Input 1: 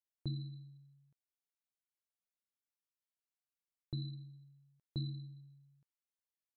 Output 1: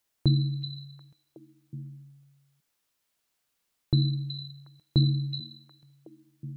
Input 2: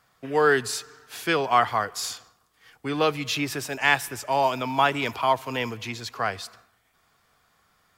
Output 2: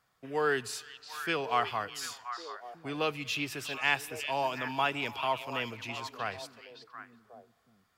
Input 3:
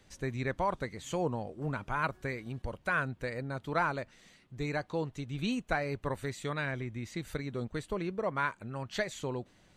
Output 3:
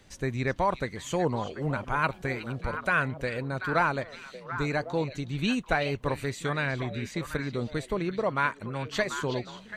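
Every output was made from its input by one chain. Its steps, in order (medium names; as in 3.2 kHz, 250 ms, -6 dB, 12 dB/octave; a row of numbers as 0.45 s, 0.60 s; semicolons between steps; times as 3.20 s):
dynamic bell 2.7 kHz, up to +7 dB, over -46 dBFS, Q 4.2; on a send: repeats whose band climbs or falls 368 ms, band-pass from 3.6 kHz, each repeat -1.4 oct, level -5 dB; on the sum: peak normalisation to -12 dBFS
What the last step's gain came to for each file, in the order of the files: +17.0 dB, -9.0 dB, +5.0 dB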